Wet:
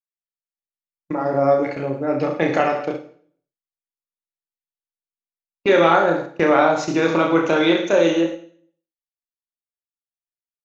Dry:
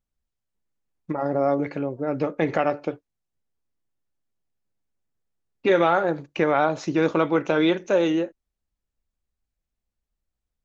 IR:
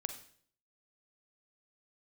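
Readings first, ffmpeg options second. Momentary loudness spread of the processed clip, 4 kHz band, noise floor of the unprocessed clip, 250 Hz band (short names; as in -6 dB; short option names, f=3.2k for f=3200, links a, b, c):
10 LU, +7.0 dB, -85 dBFS, +4.0 dB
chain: -filter_complex "[0:a]aecho=1:1:30|66|109.2|161|223.2:0.631|0.398|0.251|0.158|0.1,agate=range=-37dB:threshold=-29dB:ratio=16:detection=peak,asplit=2[a][b];[1:a]atrim=start_sample=2205,lowshelf=f=150:g=-10,highshelf=f=4.5k:g=9[c];[b][c]afir=irnorm=-1:irlink=0,volume=6dB[d];[a][d]amix=inputs=2:normalize=0,volume=-6dB"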